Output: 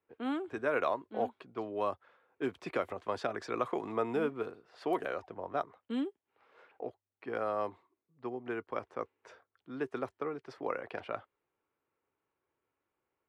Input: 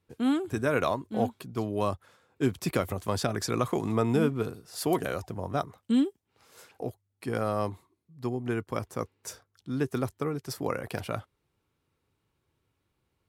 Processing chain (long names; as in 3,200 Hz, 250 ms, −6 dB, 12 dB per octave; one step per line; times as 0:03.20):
low-pass that shuts in the quiet parts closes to 2,600 Hz, open at −21.5 dBFS
three-way crossover with the lows and the highs turned down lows −18 dB, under 310 Hz, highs −16 dB, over 3,100 Hz
level −3 dB